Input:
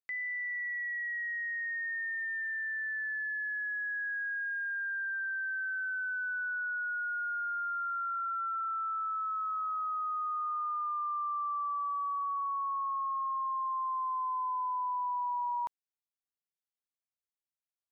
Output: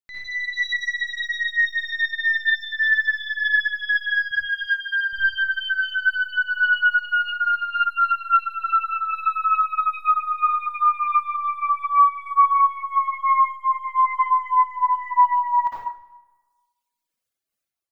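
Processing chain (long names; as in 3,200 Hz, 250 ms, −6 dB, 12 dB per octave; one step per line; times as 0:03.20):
stylus tracing distortion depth 0.066 ms
0:04.31–0:05.13: high-pass filter 790 Hz 6 dB per octave
convolution reverb RT60 1.3 s, pre-delay 48 ms, DRR −8 dB
reverb reduction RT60 1.3 s
automatic gain control gain up to 9.5 dB
amplitude modulation by smooth noise, depth 55%
level +1 dB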